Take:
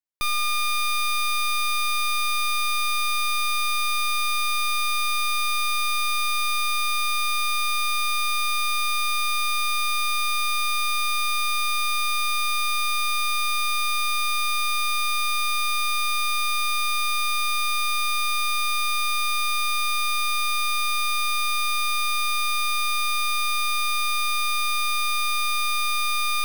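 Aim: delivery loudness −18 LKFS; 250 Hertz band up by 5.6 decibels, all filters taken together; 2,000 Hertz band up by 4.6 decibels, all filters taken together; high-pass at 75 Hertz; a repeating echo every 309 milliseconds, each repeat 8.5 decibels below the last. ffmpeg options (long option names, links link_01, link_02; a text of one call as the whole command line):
ffmpeg -i in.wav -af "highpass=75,equalizer=frequency=250:width_type=o:gain=8,equalizer=frequency=2000:width_type=o:gain=6,aecho=1:1:309|618|927|1236:0.376|0.143|0.0543|0.0206,volume=2.5dB" out.wav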